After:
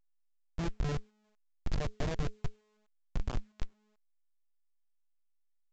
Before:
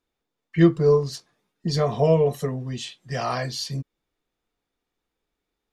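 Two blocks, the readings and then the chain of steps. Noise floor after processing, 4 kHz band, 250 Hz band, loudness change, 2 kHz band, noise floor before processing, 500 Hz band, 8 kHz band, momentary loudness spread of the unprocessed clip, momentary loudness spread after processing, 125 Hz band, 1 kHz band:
−72 dBFS, −17.0 dB, −18.5 dB, −16.5 dB, −12.5 dB, −83 dBFS, −23.0 dB, −16.0 dB, 14 LU, 12 LU, −14.0 dB, −16.5 dB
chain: harmonic and percussive parts rebalanced harmonic −8 dB
comparator with hysteresis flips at −22 dBFS
low-shelf EQ 78 Hz +9.5 dB
hum removal 212.4 Hz, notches 2
level −3 dB
A-law companding 128 kbit/s 16,000 Hz

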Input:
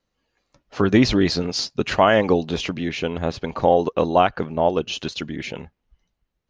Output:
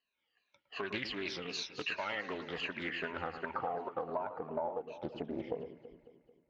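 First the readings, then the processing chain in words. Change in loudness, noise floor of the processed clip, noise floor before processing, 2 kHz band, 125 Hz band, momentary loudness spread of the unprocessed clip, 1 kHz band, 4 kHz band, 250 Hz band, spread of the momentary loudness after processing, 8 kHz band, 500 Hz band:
−18.0 dB, −83 dBFS, −78 dBFS, −11.5 dB, −24.5 dB, 13 LU, −17.5 dB, −15.0 dB, −22.0 dB, 5 LU, can't be measured, −19.0 dB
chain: rippled gain that drifts along the octave scale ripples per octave 1.5, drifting −2.7 Hz, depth 19 dB
in parallel at −3.5 dB: soft clipping −14.5 dBFS, distortion −8 dB
on the sum: band-pass filter sweep 2,800 Hz → 520 Hz, 0:01.62–0:05.59
spectral tilt −3 dB per octave
downward compressor 12 to 1, threshold −30 dBFS, peak gain reduction 21.5 dB
low-shelf EQ 62 Hz −6.5 dB
on a send: delay that swaps between a low-pass and a high-pass 110 ms, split 2,000 Hz, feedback 71%, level −9.5 dB
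on the sum: highs frequency-modulated by the lows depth 0.32 ms
level −4 dB

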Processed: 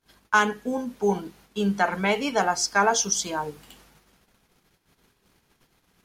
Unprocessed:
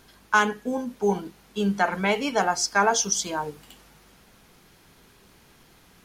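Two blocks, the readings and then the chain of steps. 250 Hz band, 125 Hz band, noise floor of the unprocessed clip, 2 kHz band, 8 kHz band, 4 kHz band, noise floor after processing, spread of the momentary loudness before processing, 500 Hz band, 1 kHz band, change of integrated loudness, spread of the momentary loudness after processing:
0.0 dB, 0.0 dB, −56 dBFS, 0.0 dB, 0.0 dB, 0.0 dB, −70 dBFS, 10 LU, 0.0 dB, 0.0 dB, 0.0 dB, 10 LU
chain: noise gate −53 dBFS, range −26 dB

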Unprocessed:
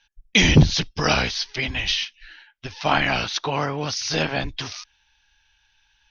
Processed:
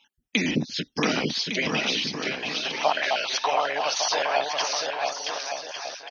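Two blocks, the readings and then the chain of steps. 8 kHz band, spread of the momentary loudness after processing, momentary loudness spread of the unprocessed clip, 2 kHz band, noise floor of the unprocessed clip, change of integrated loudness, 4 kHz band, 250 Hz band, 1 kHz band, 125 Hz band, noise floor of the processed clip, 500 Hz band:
can't be measured, 6 LU, 16 LU, −3.0 dB, −65 dBFS, −4.0 dB, −2.5 dB, −5.0 dB, +1.0 dB, −14.5 dB, −71 dBFS, +0.5 dB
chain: time-frequency cells dropped at random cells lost 24%
downward compressor 6 to 1, threshold −28 dBFS, peak gain reduction 18.5 dB
high-pass filter sweep 240 Hz → 660 Hz, 0:00.99–0:01.78
bouncing-ball delay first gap 680 ms, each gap 0.7×, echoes 5
level +4 dB

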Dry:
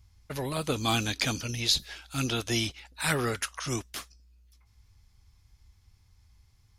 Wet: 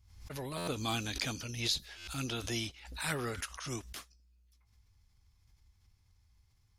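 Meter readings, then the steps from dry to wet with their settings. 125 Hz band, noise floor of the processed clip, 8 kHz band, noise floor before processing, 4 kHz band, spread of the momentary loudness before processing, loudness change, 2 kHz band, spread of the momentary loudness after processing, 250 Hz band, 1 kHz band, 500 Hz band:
−7.0 dB, −70 dBFS, −7.0 dB, −64 dBFS, −7.0 dB, 10 LU, −7.0 dB, −7.0 dB, 9 LU, −7.5 dB, −7.5 dB, −7.5 dB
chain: buffer that repeats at 0:00.57/0:01.97, samples 512, times 8
background raised ahead of every attack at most 76 dB per second
level −8 dB

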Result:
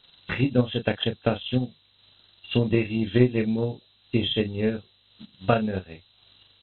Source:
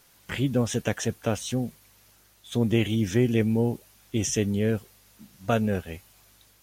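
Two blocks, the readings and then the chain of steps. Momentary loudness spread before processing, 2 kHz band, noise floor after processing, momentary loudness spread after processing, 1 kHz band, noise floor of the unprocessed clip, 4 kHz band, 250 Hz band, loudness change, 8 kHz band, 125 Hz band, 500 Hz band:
12 LU, +2.0 dB, −62 dBFS, 11 LU, +2.5 dB, −60 dBFS, +5.5 dB, +0.5 dB, +1.0 dB, below −40 dB, 0.0 dB, +2.0 dB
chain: hearing-aid frequency compression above 2,600 Hz 4 to 1
double-tracking delay 32 ms −4.5 dB
transient designer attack +9 dB, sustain −6 dB
level −3.5 dB

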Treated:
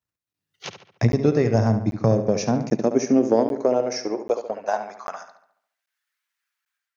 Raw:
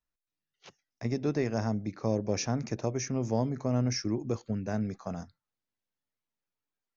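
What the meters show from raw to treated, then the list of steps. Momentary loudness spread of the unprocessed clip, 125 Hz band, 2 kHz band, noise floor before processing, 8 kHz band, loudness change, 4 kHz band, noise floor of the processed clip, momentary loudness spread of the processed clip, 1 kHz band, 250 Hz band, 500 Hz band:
8 LU, +8.0 dB, +7.5 dB, below −85 dBFS, can't be measured, +10.0 dB, +4.5 dB, below −85 dBFS, 17 LU, +11.5 dB, +9.0 dB, +12.5 dB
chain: dynamic equaliser 520 Hz, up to +4 dB, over −40 dBFS, Q 1.3
transient designer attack +11 dB, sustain −2 dB
automatic gain control gain up to 10 dB
brickwall limiter −9.5 dBFS, peak gain reduction 8.5 dB
high-pass filter sweep 97 Hz → 1,600 Hz, 0:01.77–0:05.58
feedback echo with a low-pass in the loop 71 ms, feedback 49%, low-pass 4,500 Hz, level −9 dB
regular buffer underruns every 0.79 s, samples 512, zero, from 0:00.33

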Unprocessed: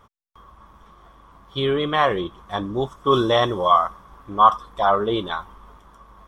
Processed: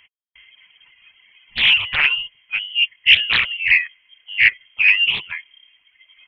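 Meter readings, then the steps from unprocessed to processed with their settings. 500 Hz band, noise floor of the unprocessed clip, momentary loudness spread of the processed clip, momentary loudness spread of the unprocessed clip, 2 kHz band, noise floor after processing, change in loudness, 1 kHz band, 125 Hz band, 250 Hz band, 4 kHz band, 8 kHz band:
below −25 dB, −53 dBFS, 16 LU, 13 LU, +16.5 dB, −62 dBFS, +5.5 dB, −19.0 dB, below −10 dB, below −20 dB, +12.5 dB, can't be measured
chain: hollow resonant body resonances 420/680/2,200 Hz, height 11 dB, ringing for 45 ms
reverb reduction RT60 1.5 s
voice inversion scrambler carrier 3,200 Hz
highs frequency-modulated by the lows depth 0.93 ms
level −1.5 dB

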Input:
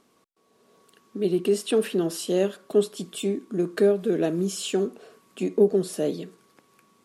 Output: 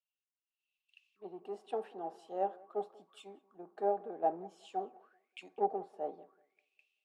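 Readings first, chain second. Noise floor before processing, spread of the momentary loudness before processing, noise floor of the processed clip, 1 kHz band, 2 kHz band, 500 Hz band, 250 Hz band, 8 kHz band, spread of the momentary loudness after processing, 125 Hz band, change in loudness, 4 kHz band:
−65 dBFS, 10 LU, below −85 dBFS, +5.0 dB, −18.5 dB, −15.5 dB, −23.0 dB, below −30 dB, 19 LU, −28.0 dB, −13.5 dB, −23.5 dB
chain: automatic gain control gain up to 5 dB
in parallel at −9.5 dB: soft clipping −15.5 dBFS, distortion −11 dB
on the sum: envelope filter 790–2,800 Hz, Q 16, down, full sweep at −20 dBFS
on a send: tape delay 193 ms, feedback 64%, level −16.5 dB, low-pass 2,000 Hz
on the sum: multiband upward and downward expander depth 100%
level +1.5 dB

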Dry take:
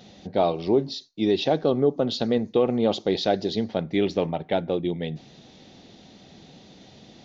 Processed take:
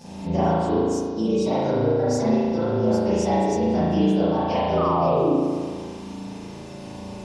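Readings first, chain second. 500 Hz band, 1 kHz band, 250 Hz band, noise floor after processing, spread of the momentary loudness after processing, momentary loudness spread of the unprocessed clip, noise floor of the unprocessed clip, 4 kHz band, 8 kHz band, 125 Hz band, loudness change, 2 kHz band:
+1.5 dB, +6.5 dB, +4.5 dB, −37 dBFS, 15 LU, 7 LU, −51 dBFS, −6.0 dB, can't be measured, +6.5 dB, +2.5 dB, +0.5 dB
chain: partials spread apart or drawn together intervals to 115%
sound drawn into the spectrogram fall, 0:04.77–0:05.33, 250–1,300 Hz −27 dBFS
downward compressor 12 to 1, threshold −34 dBFS, peak gain reduction 18 dB
spring reverb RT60 1.9 s, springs 36 ms, chirp 35 ms, DRR −10 dB
level +6.5 dB

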